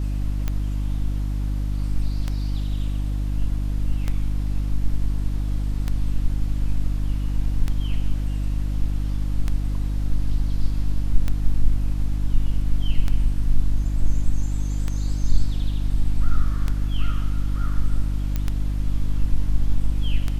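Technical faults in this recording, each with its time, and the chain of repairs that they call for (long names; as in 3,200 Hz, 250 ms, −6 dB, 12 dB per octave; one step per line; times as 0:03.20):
mains hum 50 Hz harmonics 6 −24 dBFS
scratch tick 33 1/3 rpm −12 dBFS
0:18.36: click −12 dBFS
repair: click removal
hum removal 50 Hz, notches 6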